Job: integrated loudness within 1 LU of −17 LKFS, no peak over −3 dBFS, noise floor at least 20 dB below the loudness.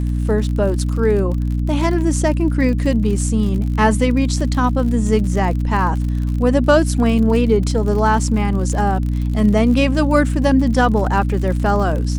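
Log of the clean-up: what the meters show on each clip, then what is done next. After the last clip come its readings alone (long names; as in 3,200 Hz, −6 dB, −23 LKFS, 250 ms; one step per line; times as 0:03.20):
crackle rate 52 per second; mains hum 60 Hz; hum harmonics up to 300 Hz; level of the hum −16 dBFS; integrated loudness −17.0 LKFS; sample peak −1.5 dBFS; target loudness −17.0 LKFS
→ click removal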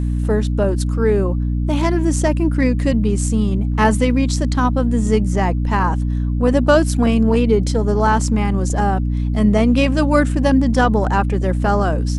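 crackle rate 0 per second; mains hum 60 Hz; hum harmonics up to 300 Hz; level of the hum −16 dBFS
→ hum removal 60 Hz, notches 5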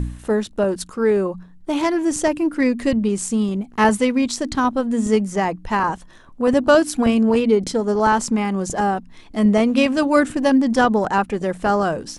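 mains hum none found; integrated loudness −19.0 LKFS; sample peak −2.5 dBFS; target loudness −17.0 LKFS
→ level +2 dB
brickwall limiter −3 dBFS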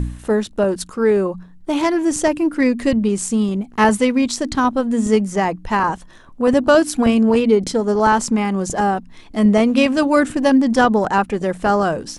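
integrated loudness −17.5 LKFS; sample peak −3.0 dBFS; background noise floor −42 dBFS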